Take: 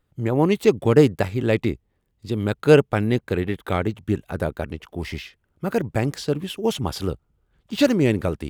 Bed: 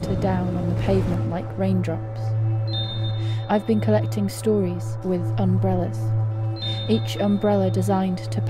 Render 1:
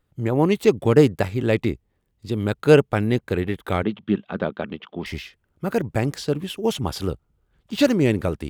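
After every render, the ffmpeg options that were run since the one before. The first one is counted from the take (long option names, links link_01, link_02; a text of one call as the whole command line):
ffmpeg -i in.wav -filter_complex "[0:a]asettb=1/sr,asplit=3[link_01][link_02][link_03];[link_01]atrim=end=3.834[link_04];[link_02]atrim=start=3.83:end=5.06,asetpts=PTS-STARTPTS,afade=type=in:duration=0.004:curve=qsin,afade=type=out:start_time=1.226:duration=0.004:curve=qsin,highpass=190,equalizer=frequency=200:width_type=q:width=4:gain=9,equalizer=frequency=1200:width_type=q:width=4:gain=4,equalizer=frequency=3300:width_type=q:width=4:gain=8,lowpass=frequency=3900:width=0.5412,lowpass=frequency=3900:width=1.3066[link_05];[link_03]atrim=start=5.056[link_06];[link_04][link_05]acrossfade=duration=0.004:curve1=hsin:curve2=qsin[link_07];[link_07][link_06]acrossfade=duration=0.004:curve1=qsin:curve2=hsin" out.wav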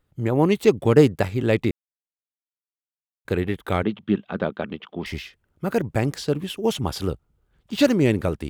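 ffmpeg -i in.wav -filter_complex "[0:a]asplit=3[link_01][link_02][link_03];[link_01]atrim=end=1.71,asetpts=PTS-STARTPTS,afade=type=out:start_time=1.706:duration=0.004:curve=hsin[link_04];[link_02]atrim=start=1.71:end=3.25,asetpts=PTS-STARTPTS,volume=0[link_05];[link_03]atrim=start=3.25,asetpts=PTS-STARTPTS,afade=type=in:duration=0.004:curve=hsin[link_06];[link_04][link_05][link_06]concat=n=3:v=0:a=1" out.wav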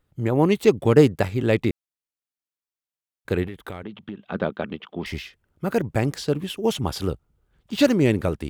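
ffmpeg -i in.wav -filter_complex "[0:a]asettb=1/sr,asplit=3[link_01][link_02][link_03];[link_01]atrim=end=3.464[link_04];[link_02]atrim=start=3.46:end=4.29,asetpts=PTS-STARTPTS,afade=type=in:duration=0.004:curve=qsin,afade=type=out:start_time=0.826:duration=0.004:curve=qsin,acompressor=threshold=-30dB:ratio=8:attack=3.2:release=140:knee=1:detection=peak[link_05];[link_03]atrim=start=4.286[link_06];[link_04][link_05]acrossfade=duration=0.004:curve1=hsin:curve2=qsin[link_07];[link_07][link_06]acrossfade=duration=0.004:curve1=qsin:curve2=hsin" out.wav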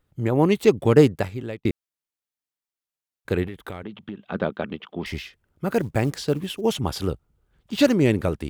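ffmpeg -i in.wav -filter_complex "[0:a]asettb=1/sr,asplit=3[link_01][link_02][link_03];[link_01]atrim=end=5.704[link_04];[link_02]atrim=start=5.7:end=6.61,asetpts=PTS-STARTPTS,afade=type=in:duration=0.004:curve=qsin,afade=type=out:start_time=0.906:duration=0.004:curve=qsin,acrusher=bits=8:mode=log:mix=0:aa=0.000001[link_05];[link_03]atrim=start=6.606[link_06];[link_04][link_05]acrossfade=duration=0.004:curve1=hsin:curve2=qsin[link_07];[link_07][link_06]acrossfade=duration=0.004:curve1=qsin:curve2=hsin,asplit=2[link_08][link_09];[link_08]atrim=end=1.65,asetpts=PTS-STARTPTS,afade=type=out:start_time=1.04:duration=0.61[link_10];[link_09]atrim=start=1.65,asetpts=PTS-STARTPTS,afade=type=in:duration=0.004:curve=hsin[link_11];[link_10][link_11]concat=n=2:v=0:a=1" out.wav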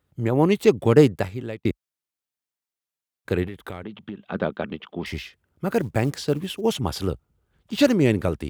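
ffmpeg -i in.wav -af "highpass=frequency=47:width=0.5412,highpass=frequency=47:width=1.3066" out.wav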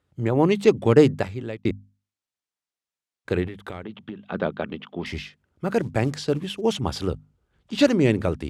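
ffmpeg -i in.wav -af "lowpass=8300,bandreject=frequency=50:width_type=h:width=6,bandreject=frequency=100:width_type=h:width=6,bandreject=frequency=150:width_type=h:width=6,bandreject=frequency=200:width_type=h:width=6,bandreject=frequency=250:width_type=h:width=6" out.wav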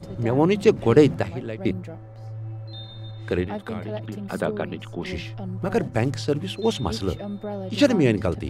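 ffmpeg -i in.wav -i bed.wav -filter_complex "[1:a]volume=-12dB[link_01];[0:a][link_01]amix=inputs=2:normalize=0" out.wav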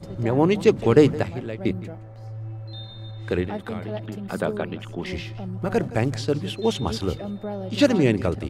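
ffmpeg -i in.wav -af "aecho=1:1:166:0.126" out.wav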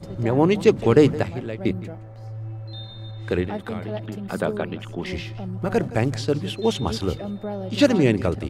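ffmpeg -i in.wav -af "volume=1dB,alimiter=limit=-3dB:level=0:latency=1" out.wav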